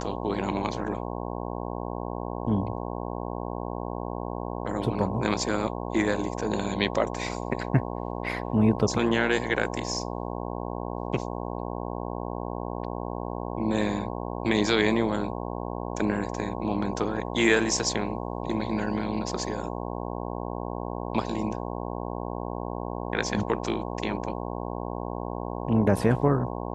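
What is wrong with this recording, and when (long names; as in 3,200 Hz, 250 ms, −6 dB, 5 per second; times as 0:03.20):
mains buzz 60 Hz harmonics 18 −33 dBFS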